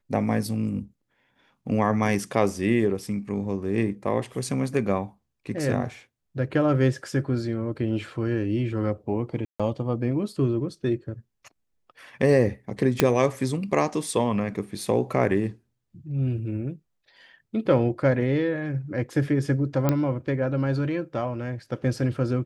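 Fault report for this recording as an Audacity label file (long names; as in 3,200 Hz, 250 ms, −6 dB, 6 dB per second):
9.450000	9.600000	drop-out 146 ms
13.000000	13.000000	click −3 dBFS
19.890000	19.890000	click −9 dBFS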